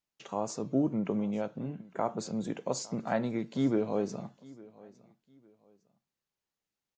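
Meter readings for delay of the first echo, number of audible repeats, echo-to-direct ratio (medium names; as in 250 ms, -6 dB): 857 ms, 2, -21.5 dB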